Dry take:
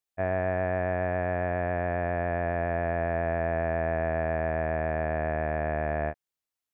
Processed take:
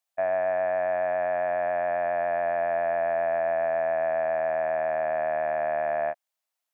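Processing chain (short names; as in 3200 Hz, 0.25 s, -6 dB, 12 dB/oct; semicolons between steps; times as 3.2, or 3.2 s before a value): limiter -22 dBFS, peak gain reduction 5.5 dB; HPF 240 Hz 12 dB/oct; resonant low shelf 510 Hz -6.5 dB, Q 3; gain +4 dB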